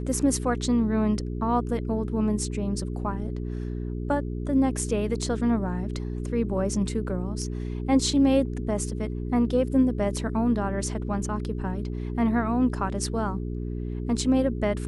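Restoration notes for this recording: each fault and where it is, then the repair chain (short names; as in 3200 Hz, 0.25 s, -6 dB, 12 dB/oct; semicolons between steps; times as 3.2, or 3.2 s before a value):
hum 60 Hz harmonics 7 -31 dBFS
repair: de-hum 60 Hz, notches 7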